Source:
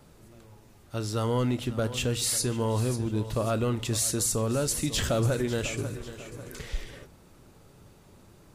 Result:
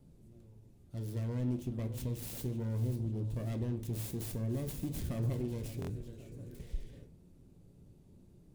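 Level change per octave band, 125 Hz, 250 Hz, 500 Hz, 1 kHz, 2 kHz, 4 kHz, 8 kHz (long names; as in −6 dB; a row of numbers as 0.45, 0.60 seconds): −5.5, −8.0, −14.0, −19.0, −19.0, −21.0, −21.5 decibels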